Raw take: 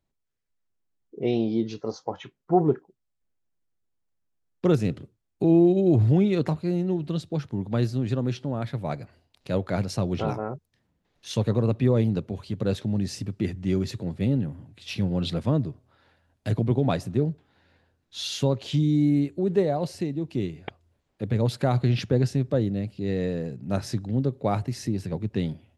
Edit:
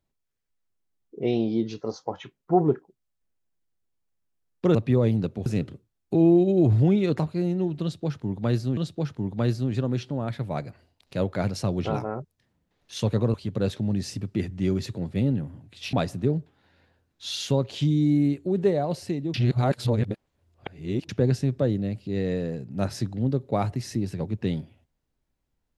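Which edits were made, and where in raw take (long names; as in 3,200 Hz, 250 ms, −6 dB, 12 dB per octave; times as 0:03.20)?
0:07.11–0:08.06: repeat, 2 plays
0:11.68–0:12.39: move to 0:04.75
0:14.98–0:16.85: remove
0:20.26–0:22.01: reverse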